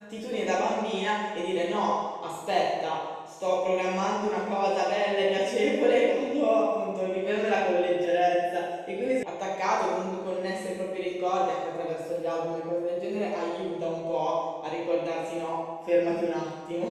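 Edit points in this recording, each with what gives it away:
9.23 sound cut off

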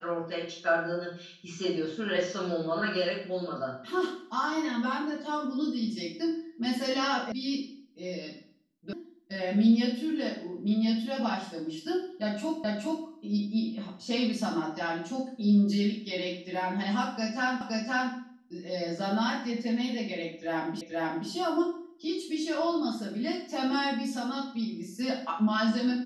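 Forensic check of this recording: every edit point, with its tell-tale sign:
7.32 sound cut off
8.93 sound cut off
12.64 repeat of the last 0.42 s
17.61 repeat of the last 0.52 s
20.81 repeat of the last 0.48 s

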